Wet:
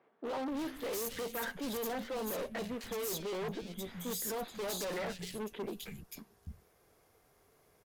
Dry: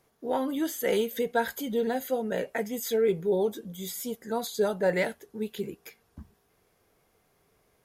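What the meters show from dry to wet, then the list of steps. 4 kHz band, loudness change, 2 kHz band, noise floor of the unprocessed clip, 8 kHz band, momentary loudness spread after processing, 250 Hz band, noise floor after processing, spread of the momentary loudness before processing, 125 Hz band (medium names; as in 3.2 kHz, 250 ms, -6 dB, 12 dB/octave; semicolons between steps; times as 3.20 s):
-3.5 dB, -9.0 dB, -8.0 dB, -70 dBFS, -2.5 dB, 11 LU, -8.5 dB, -69 dBFS, 11 LU, -6.5 dB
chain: valve stage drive 37 dB, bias 0.6; three bands offset in time mids, highs, lows 260/290 ms, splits 190/2800 Hz; wavefolder -35.5 dBFS; trim +4 dB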